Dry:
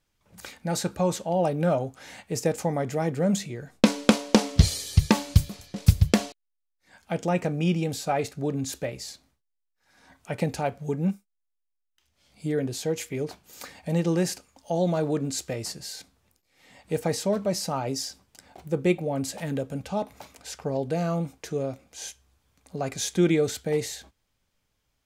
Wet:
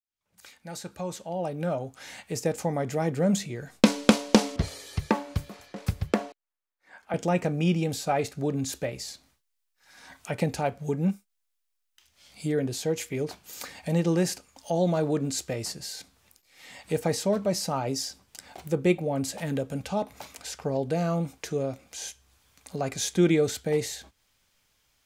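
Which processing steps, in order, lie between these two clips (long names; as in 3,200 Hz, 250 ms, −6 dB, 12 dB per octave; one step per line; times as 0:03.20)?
fade in at the beginning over 3.21 s
0:04.56–0:07.14: three-way crossover with the lows and the highs turned down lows −12 dB, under 260 Hz, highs −16 dB, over 2,000 Hz
one half of a high-frequency compander encoder only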